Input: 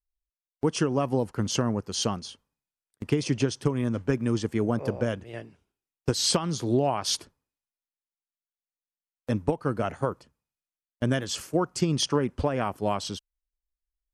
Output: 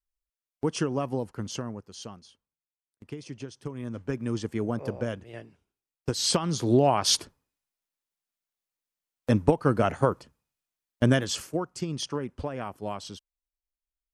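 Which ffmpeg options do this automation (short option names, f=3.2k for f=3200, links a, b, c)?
-af "volume=16dB,afade=t=out:st=0.85:d=1.12:silence=0.266073,afade=t=in:st=3.53:d=0.85:silence=0.298538,afade=t=in:st=6.09:d=0.92:silence=0.398107,afade=t=out:st=11.07:d=0.58:silence=0.266073"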